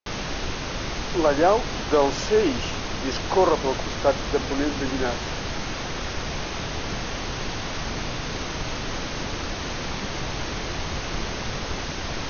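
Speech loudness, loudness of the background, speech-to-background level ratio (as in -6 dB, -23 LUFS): -24.0 LUFS, -30.0 LUFS, 6.0 dB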